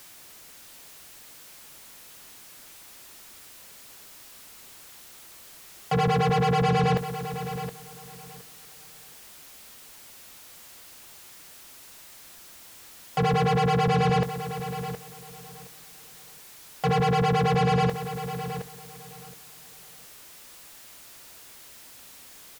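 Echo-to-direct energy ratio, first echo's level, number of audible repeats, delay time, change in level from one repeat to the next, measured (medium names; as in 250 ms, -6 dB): -10.5 dB, -10.5 dB, 2, 719 ms, -14.0 dB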